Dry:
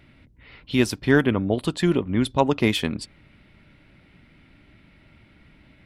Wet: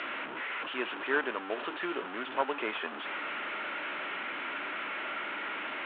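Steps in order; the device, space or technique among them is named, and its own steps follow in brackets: digital answering machine (BPF 350–3100 Hz; delta modulation 16 kbps, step -24 dBFS; speaker cabinet 490–4500 Hz, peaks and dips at 510 Hz -3 dB, 740 Hz -4 dB, 1400 Hz +4 dB, 2100 Hz -4 dB); gain -4.5 dB

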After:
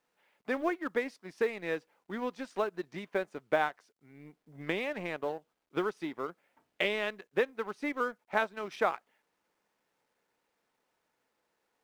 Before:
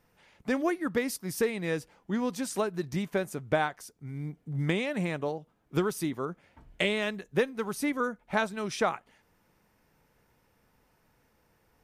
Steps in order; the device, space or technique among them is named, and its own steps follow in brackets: phone line with mismatched companding (BPF 340–3200 Hz; G.711 law mismatch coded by A)

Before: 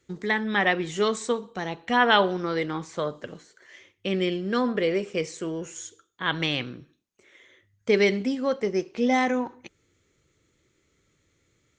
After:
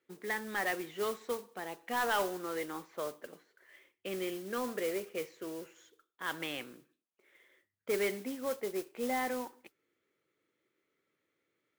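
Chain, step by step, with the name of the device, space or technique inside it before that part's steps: carbon microphone (BPF 310–2700 Hz; soft clip -15 dBFS, distortion -15 dB; modulation noise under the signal 13 dB); gain -8.5 dB

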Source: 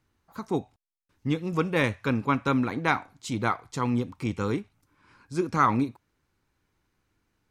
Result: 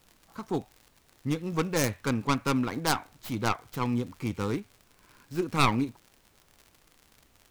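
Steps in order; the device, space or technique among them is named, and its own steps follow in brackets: record under a worn stylus (tracing distortion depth 0.48 ms; crackle 77/s -38 dBFS; pink noise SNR 33 dB); gain -2.5 dB

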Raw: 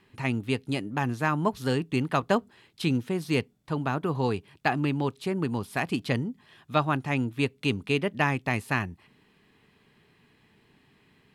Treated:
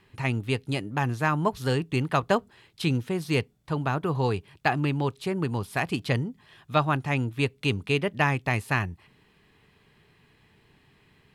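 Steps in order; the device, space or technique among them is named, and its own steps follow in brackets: low shelf boost with a cut just above (low shelf 110 Hz +6.5 dB; bell 240 Hz -5.5 dB 0.8 oct); gain +1.5 dB

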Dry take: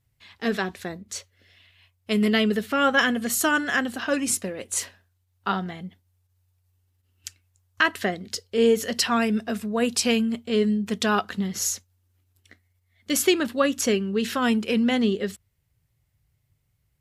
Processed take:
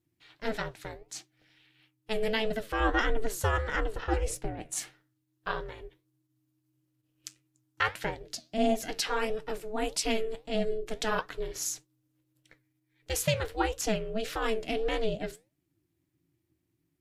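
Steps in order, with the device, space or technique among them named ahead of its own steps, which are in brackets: alien voice (ring modulator 220 Hz; flange 1.6 Hz, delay 5.2 ms, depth 7.9 ms, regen +78%); 2.8–4.72 tilt -2 dB/oct

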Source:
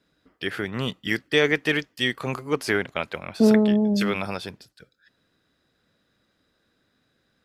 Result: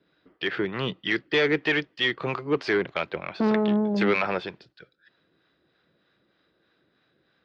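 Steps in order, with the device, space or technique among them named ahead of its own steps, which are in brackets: 3.94–4.43 graphic EQ 500/1000/2000/4000/8000 Hz +4/+4/+9/-7/+8 dB; guitar amplifier with harmonic tremolo (harmonic tremolo 3.2 Hz, depth 50%, crossover 590 Hz; soft clip -20 dBFS, distortion -10 dB; speaker cabinet 85–4100 Hz, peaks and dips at 98 Hz -7 dB, 240 Hz -6 dB, 350 Hz +5 dB); gain +4 dB

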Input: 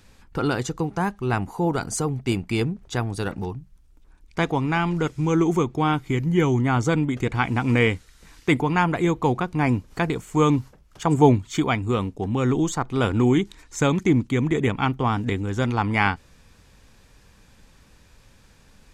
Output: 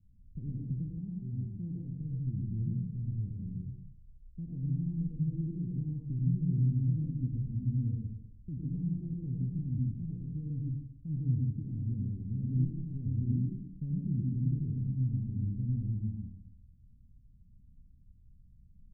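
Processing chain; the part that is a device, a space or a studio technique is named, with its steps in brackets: club heard from the street (limiter -14 dBFS, peak gain reduction 10.5 dB; LPF 180 Hz 24 dB/oct; reverb RT60 0.80 s, pre-delay 84 ms, DRR -2.5 dB); 0.99–2 low shelf 140 Hz -6.5 dB; gain -8 dB

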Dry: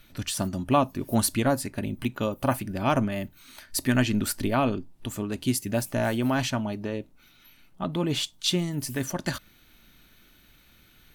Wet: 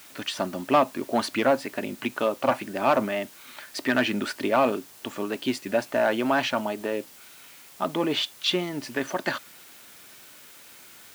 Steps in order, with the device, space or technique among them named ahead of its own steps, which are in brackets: tape answering machine (BPF 380–3100 Hz; soft clip -18.5 dBFS, distortion -13 dB; wow and flutter; white noise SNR 22 dB); HPF 72 Hz; gain +7 dB

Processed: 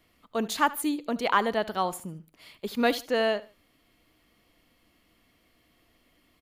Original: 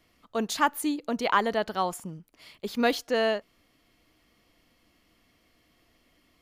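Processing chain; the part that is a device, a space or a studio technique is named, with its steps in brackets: exciter from parts (in parallel at -8 dB: HPF 2000 Hz + soft clip -23.5 dBFS, distortion -16 dB + HPF 4700 Hz 24 dB/oct); on the sum: feedback echo 75 ms, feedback 29%, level -19 dB

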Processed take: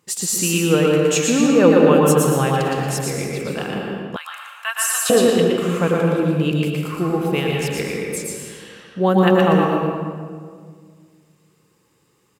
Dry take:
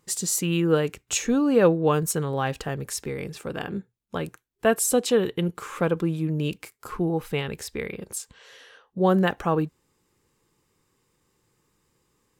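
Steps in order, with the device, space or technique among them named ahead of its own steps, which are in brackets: PA in a hall (HPF 100 Hz; bell 2700 Hz +4.5 dB 0.29 oct; echo 0.117 s -4 dB; reverb RT60 1.8 s, pre-delay 0.102 s, DRR 0 dB); 4.16–5.1 steep high-pass 980 Hz 36 dB/oct; gain +3 dB

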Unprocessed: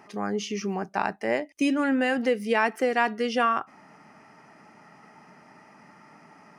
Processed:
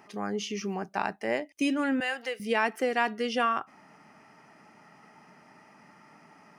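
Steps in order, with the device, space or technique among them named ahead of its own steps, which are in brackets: presence and air boost (bell 3200 Hz +3 dB 0.77 oct; high shelf 9500 Hz +5 dB); 2–2.4 HPF 750 Hz 12 dB/oct; gain -3.5 dB

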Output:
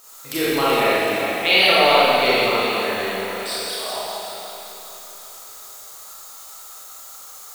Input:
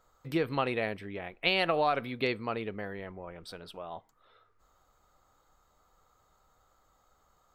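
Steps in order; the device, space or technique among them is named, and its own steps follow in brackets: noise-reduction cassette on a plain deck (mismatched tape noise reduction encoder only; wow and flutter; white noise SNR 30 dB); 3.02–3.96 HPF 520 Hz; tone controls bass -11 dB, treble +12 dB; echo with dull and thin repeats by turns 0.191 s, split 2300 Hz, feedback 73%, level -6.5 dB; Schroeder reverb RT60 2.2 s, combs from 28 ms, DRR -9.5 dB; gain +3 dB

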